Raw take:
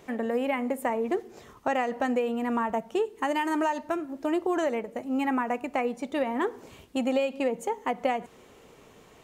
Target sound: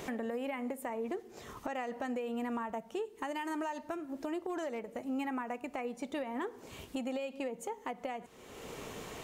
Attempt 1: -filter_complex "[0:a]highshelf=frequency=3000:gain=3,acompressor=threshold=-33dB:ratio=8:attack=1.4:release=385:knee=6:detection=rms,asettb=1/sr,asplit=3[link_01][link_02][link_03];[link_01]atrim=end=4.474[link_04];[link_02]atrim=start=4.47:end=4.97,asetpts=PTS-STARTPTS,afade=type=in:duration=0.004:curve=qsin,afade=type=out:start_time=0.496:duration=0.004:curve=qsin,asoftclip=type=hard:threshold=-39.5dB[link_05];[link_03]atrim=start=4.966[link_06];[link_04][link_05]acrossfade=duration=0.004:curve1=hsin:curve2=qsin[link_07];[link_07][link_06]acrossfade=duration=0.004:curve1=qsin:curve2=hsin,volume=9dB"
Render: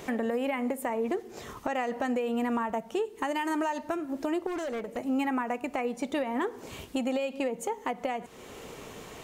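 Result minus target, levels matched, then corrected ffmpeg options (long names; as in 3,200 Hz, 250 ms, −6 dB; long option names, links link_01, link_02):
downward compressor: peak gain reduction −7.5 dB
-filter_complex "[0:a]highshelf=frequency=3000:gain=3,acompressor=threshold=-41.5dB:ratio=8:attack=1.4:release=385:knee=6:detection=rms,asettb=1/sr,asplit=3[link_01][link_02][link_03];[link_01]atrim=end=4.474[link_04];[link_02]atrim=start=4.47:end=4.97,asetpts=PTS-STARTPTS,afade=type=in:duration=0.004:curve=qsin,afade=type=out:start_time=0.496:duration=0.004:curve=qsin,asoftclip=type=hard:threshold=-39.5dB[link_05];[link_03]atrim=start=4.966[link_06];[link_04][link_05]acrossfade=duration=0.004:curve1=hsin:curve2=qsin[link_07];[link_07][link_06]acrossfade=duration=0.004:curve1=qsin:curve2=hsin,volume=9dB"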